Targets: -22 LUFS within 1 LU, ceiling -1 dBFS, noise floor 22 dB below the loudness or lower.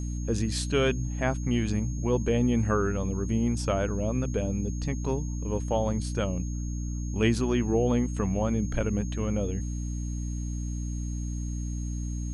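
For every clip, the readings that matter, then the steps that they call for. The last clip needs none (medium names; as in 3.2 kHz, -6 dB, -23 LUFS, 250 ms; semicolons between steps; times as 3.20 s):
hum 60 Hz; highest harmonic 300 Hz; hum level -29 dBFS; steady tone 6.5 kHz; tone level -46 dBFS; loudness -29.0 LUFS; peak level -11.0 dBFS; loudness target -22.0 LUFS
-> de-hum 60 Hz, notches 5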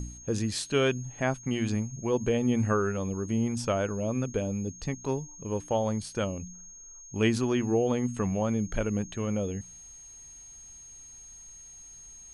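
hum not found; steady tone 6.5 kHz; tone level -46 dBFS
-> band-stop 6.5 kHz, Q 30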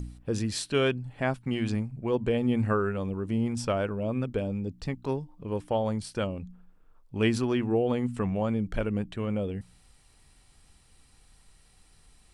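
steady tone not found; loudness -29.5 LUFS; peak level -12.0 dBFS; loudness target -22.0 LUFS
-> trim +7.5 dB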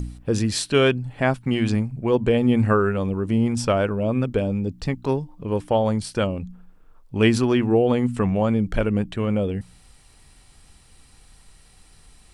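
loudness -22.0 LUFS; peak level -4.5 dBFS; noise floor -52 dBFS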